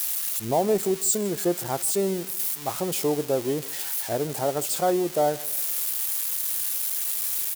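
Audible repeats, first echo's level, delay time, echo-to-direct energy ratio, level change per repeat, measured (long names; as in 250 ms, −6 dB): 2, −22.0 dB, 155 ms, −21.5 dB, −8.0 dB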